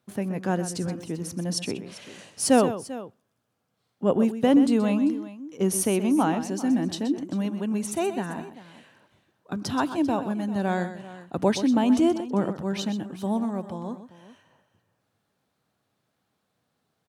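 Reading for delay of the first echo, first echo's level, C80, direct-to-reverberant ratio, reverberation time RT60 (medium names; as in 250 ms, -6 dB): 126 ms, -11.5 dB, no reverb, no reverb, no reverb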